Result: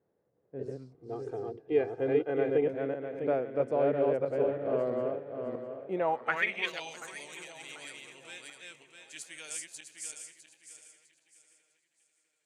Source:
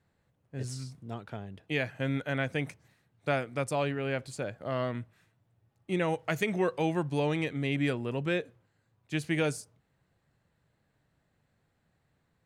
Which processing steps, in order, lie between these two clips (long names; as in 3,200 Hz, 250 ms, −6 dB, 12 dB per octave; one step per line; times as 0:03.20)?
feedback delay that plays each chunk backwards 327 ms, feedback 54%, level −1.5 dB
band-pass filter sweep 440 Hz → 7,700 Hz, 0:05.83–0:07.04
0:00.94–0:02.66: comb filter 2.5 ms, depth 72%
on a send: tape delay 736 ms, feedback 44%, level −15.5 dB, low-pass 4,900 Hz
on the sum: level +6.5 dB